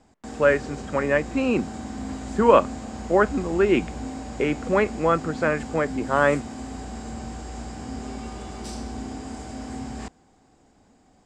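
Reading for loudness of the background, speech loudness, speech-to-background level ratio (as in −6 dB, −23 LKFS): −35.0 LKFS, −22.5 LKFS, 12.5 dB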